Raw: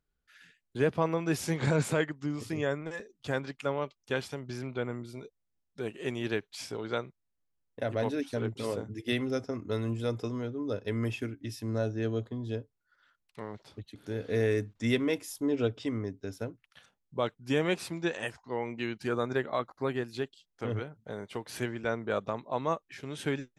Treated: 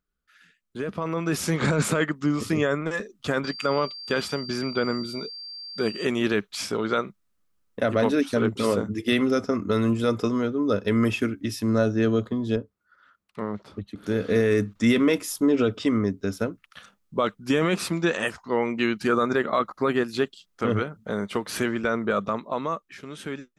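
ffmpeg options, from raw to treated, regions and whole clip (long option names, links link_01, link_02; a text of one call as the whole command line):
ffmpeg -i in.wav -filter_complex "[0:a]asettb=1/sr,asplit=3[link_01][link_02][link_03];[link_01]atrim=end=3.444[link_04];[link_02]atrim=start=3.44:end=6.05,asetpts=PTS-STARTPTS,afade=type=in:duration=0.004:curve=qsin,afade=type=out:start_time=2.606:duration=0.004:curve=qsin,highpass=58,aeval=exprs='val(0)+0.00501*sin(2*PI*4700*n/s)':channel_layout=same[link_05];[link_03]atrim=start=6.046[link_06];[link_04][link_05]acrossfade=duration=0.004:curve1=hsin:curve2=qsin[link_07];[link_07][link_06]acrossfade=duration=0.004:curve1=qsin:curve2=hsin,asettb=1/sr,asplit=3[link_08][link_09][link_10];[link_08]atrim=end=12.564[link_11];[link_09]atrim=start=12.56:end=14.03,asetpts=PTS-STARTPTS,afade=type=in:duration=0.004:curve=qsin,afade=type=out:start_time=1.466:duration=0.004:curve=qsin,highpass=42,highshelf=frequency=2000:gain=-10[link_12];[link_10]atrim=start=14.026[link_13];[link_11][link_12]acrossfade=duration=0.004:curve1=hsin:curve2=qsin[link_14];[link_14][link_13]acrossfade=duration=0.004:curve1=qsin:curve2=hsin,equalizer=frequency=125:width_type=o:width=0.33:gain=-9,equalizer=frequency=200:width_type=o:width=0.33:gain=7,equalizer=frequency=800:width_type=o:width=0.33:gain=-4,equalizer=frequency=1250:width_type=o:width=0.33:gain=8,alimiter=limit=-22dB:level=0:latency=1:release=14,dynaudnorm=framelen=150:gausssize=17:maxgain=11dB,volume=-1dB" out.wav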